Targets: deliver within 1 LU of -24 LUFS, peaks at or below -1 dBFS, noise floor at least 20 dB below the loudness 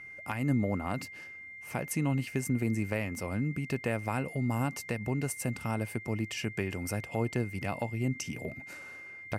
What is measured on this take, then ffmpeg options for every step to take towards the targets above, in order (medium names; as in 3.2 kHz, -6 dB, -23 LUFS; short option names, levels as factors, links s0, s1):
steady tone 2.1 kHz; tone level -44 dBFS; loudness -33.5 LUFS; peak level -18.0 dBFS; loudness target -24.0 LUFS
-> -af "bandreject=f=2100:w=30"
-af "volume=2.99"